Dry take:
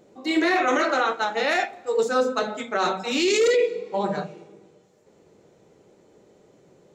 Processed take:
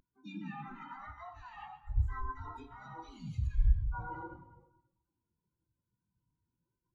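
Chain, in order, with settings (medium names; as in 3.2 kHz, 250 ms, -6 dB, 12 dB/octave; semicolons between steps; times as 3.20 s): every band turned upside down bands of 500 Hz; treble shelf 3.7 kHz +8.5 dB; hum notches 50/100/150/200/250/300/350/400/450/500 Hz; reverse; compression 16:1, threshold -30 dBFS, peak gain reduction 15 dB; reverse; peak limiter -30.5 dBFS, peak gain reduction 10 dB; harmony voices +7 st -2 dB; on a send at -3 dB: reverberation RT60 2.4 s, pre-delay 49 ms; on the sum: spectral contrast expander 2.5:1; trim +7.5 dB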